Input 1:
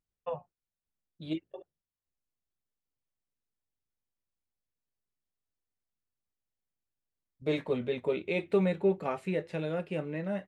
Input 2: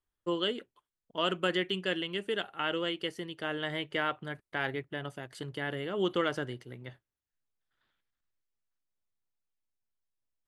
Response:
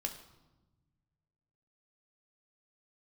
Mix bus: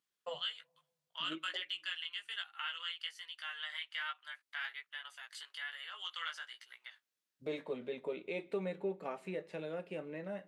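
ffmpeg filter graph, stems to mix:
-filter_complex "[0:a]highpass=230,volume=-2dB,asplit=2[link_01][link_02];[link_02]volume=-14.5dB[link_03];[1:a]highpass=frequency=1100:width=0.5412,highpass=frequency=1100:width=1.3066,equalizer=frequency=4200:width=0.55:gain=6.5,flanger=delay=16:depth=2.2:speed=1.2,volume=1dB[link_04];[2:a]atrim=start_sample=2205[link_05];[link_03][link_05]afir=irnorm=-1:irlink=0[link_06];[link_01][link_04][link_06]amix=inputs=3:normalize=0,acompressor=threshold=-50dB:ratio=1.5"

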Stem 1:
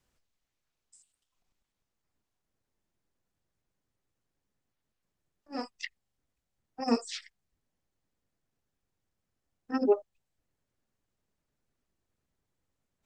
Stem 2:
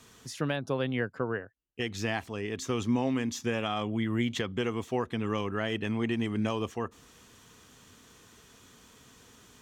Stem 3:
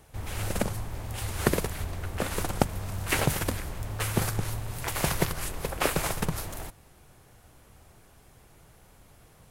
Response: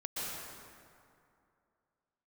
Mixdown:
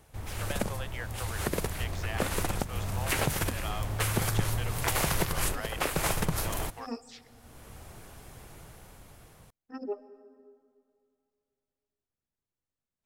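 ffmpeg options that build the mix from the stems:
-filter_complex "[0:a]volume=-11.5dB,asplit=3[link_01][link_02][link_03];[link_02]volume=-18dB[link_04];[1:a]aeval=exprs='sgn(val(0))*max(abs(val(0))-0.00631,0)':channel_layout=same,highpass=frequency=600:width=0.5412,highpass=frequency=600:width=1.3066,volume=-4dB[link_05];[2:a]dynaudnorm=framelen=500:gausssize=7:maxgain=14dB,volume=-3dB[link_06];[link_03]apad=whole_len=419124[link_07];[link_06][link_07]sidechaincompress=threshold=-53dB:ratio=10:attack=46:release=523[link_08];[3:a]atrim=start_sample=2205[link_09];[link_04][link_09]afir=irnorm=-1:irlink=0[link_10];[link_01][link_05][link_08][link_10]amix=inputs=4:normalize=0,alimiter=limit=-15dB:level=0:latency=1:release=169"

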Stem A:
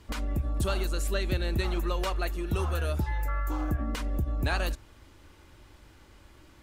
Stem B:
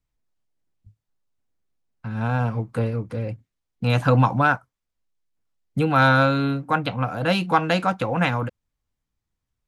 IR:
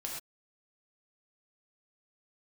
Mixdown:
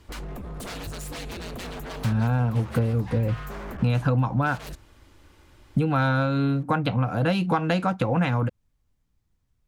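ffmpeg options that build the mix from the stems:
-filter_complex "[0:a]aeval=exprs='0.0299*(abs(mod(val(0)/0.0299+3,4)-2)-1)':channel_layout=same,volume=0dB[link_01];[1:a]lowshelf=frequency=380:gain=7.5,volume=3dB[link_02];[link_01][link_02]amix=inputs=2:normalize=0,acompressor=threshold=-20dB:ratio=6"

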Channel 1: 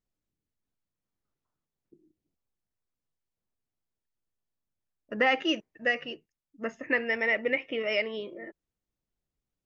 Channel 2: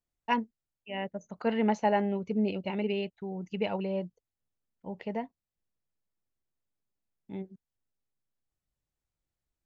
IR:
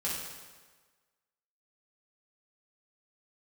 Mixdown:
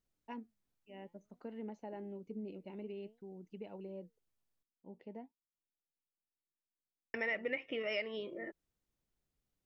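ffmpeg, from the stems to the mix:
-filter_complex "[0:a]volume=0.5dB,asplit=3[link_01][link_02][link_03];[link_01]atrim=end=4.63,asetpts=PTS-STARTPTS,afade=type=out:start_time=4.626:duration=0.004:curve=hsin[link_04];[link_02]atrim=start=4.63:end=7.14,asetpts=PTS-STARTPTS,volume=0[link_05];[link_03]atrim=start=7.14,asetpts=PTS-STARTPTS,afade=type=in:duration=0.004:curve=hsin[link_06];[link_04][link_05][link_06]concat=n=3:v=0:a=1[link_07];[1:a]equalizer=frequency=310:width=0.9:gain=12.5,alimiter=limit=-12.5dB:level=0:latency=1:release=295,flanger=delay=1.2:depth=5.9:regen=89:speed=0.55:shape=triangular,volume=-16.5dB[link_08];[link_07][link_08]amix=inputs=2:normalize=0,acompressor=threshold=-42dB:ratio=2"

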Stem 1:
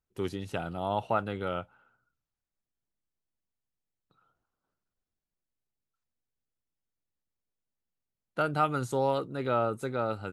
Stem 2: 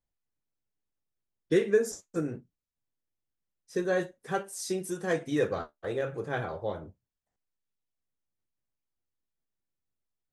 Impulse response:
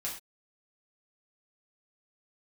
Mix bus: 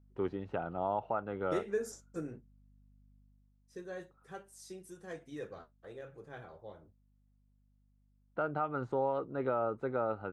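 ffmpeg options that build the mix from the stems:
-filter_complex "[0:a]lowpass=1200,lowshelf=frequency=250:gain=-11,volume=2.5dB[link_01];[1:a]aeval=exprs='val(0)+0.00224*(sin(2*PI*50*n/s)+sin(2*PI*2*50*n/s)/2+sin(2*PI*3*50*n/s)/3+sin(2*PI*4*50*n/s)/4+sin(2*PI*5*50*n/s)/5)':channel_layout=same,volume=-9dB,afade=type=out:start_time=3.16:duration=0.39:silence=0.446684[link_02];[link_01][link_02]amix=inputs=2:normalize=0,alimiter=limit=-22.5dB:level=0:latency=1:release=248"

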